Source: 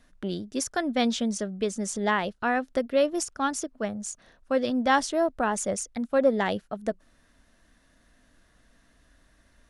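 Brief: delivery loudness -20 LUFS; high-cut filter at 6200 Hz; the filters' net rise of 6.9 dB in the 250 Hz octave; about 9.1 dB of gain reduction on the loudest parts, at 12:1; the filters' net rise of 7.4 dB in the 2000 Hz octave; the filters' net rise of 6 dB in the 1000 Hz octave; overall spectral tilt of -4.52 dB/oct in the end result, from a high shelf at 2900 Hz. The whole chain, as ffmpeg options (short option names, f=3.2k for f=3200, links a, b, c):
-af "lowpass=6.2k,equalizer=f=250:t=o:g=7.5,equalizer=f=1k:t=o:g=6,equalizer=f=2k:t=o:g=8.5,highshelf=f=2.9k:g=-4.5,acompressor=threshold=-20dB:ratio=12,volume=7dB"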